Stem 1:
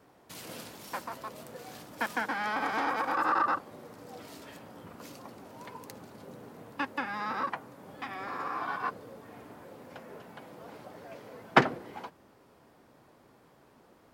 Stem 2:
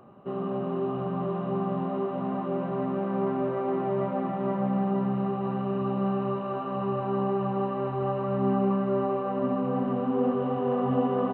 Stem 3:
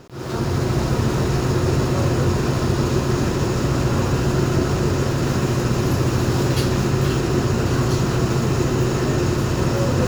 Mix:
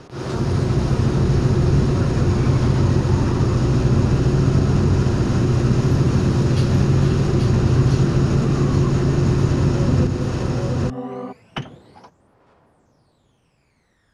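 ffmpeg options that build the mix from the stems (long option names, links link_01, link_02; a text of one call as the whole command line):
ffmpeg -i stem1.wav -i stem2.wav -i stem3.wav -filter_complex "[0:a]equalizer=frequency=290:width_type=o:width=2.1:gain=-8.5,aphaser=in_gain=1:out_gain=1:delay=1.1:decay=0.74:speed=0.16:type=triangular,volume=-1dB[link_01];[1:a]volume=-3dB[link_02];[2:a]bandreject=frequency=7500:width=6.2,volume=2.5dB,asplit=2[link_03][link_04];[link_04]volume=-3.5dB,aecho=0:1:830:1[link_05];[link_01][link_02][link_03][link_05]amix=inputs=4:normalize=0,lowpass=frequency=9600:width=0.5412,lowpass=frequency=9600:width=1.3066,acrossover=split=280[link_06][link_07];[link_07]acompressor=threshold=-27dB:ratio=5[link_08];[link_06][link_08]amix=inputs=2:normalize=0" out.wav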